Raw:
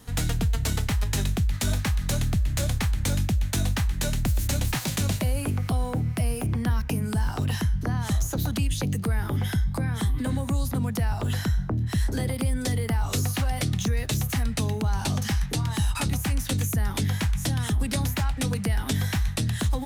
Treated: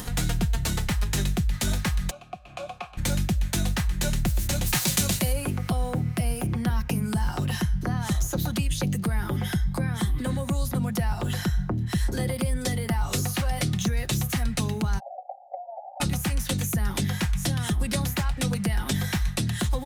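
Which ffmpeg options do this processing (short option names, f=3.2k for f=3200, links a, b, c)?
-filter_complex "[0:a]asplit=3[a][b][c];[a]afade=t=out:st=2.09:d=0.02[d];[b]asplit=3[e][f][g];[e]bandpass=f=730:t=q:w=8,volume=0dB[h];[f]bandpass=f=1.09k:t=q:w=8,volume=-6dB[i];[g]bandpass=f=2.44k:t=q:w=8,volume=-9dB[j];[h][i][j]amix=inputs=3:normalize=0,afade=t=in:st=2.09:d=0.02,afade=t=out:st=2.97:d=0.02[k];[c]afade=t=in:st=2.97:d=0.02[l];[d][k][l]amix=inputs=3:normalize=0,asettb=1/sr,asplit=3[m][n][o];[m]atrim=end=4.664[p];[n]atrim=start=4.66:end=5.33,asetpts=PTS-STARTPTS,afade=t=in:d=0.004:c=qsin,afade=t=out:st=0.666:d=0.004:c=qsin,highshelf=f=3.6k:g=8.5[q];[o]atrim=start=5.326[r];[p][q]acrossfade=d=0.004:c1=hsin:c2=qsin[s];[s][r]acrossfade=d=0.004:c1=qsin:c2=hsin,asplit=3[t][u][v];[t]afade=t=out:st=14.98:d=0.02[w];[u]asuperpass=centerf=670:order=12:qfactor=2.7,afade=t=in:st=14.98:d=0.02,afade=t=out:st=16:d=0.02[x];[v]afade=t=in:st=16:d=0.02[y];[w][x][y]amix=inputs=3:normalize=0,aecho=1:1:5.6:0.44,acompressor=mode=upward:threshold=-26dB:ratio=2.5"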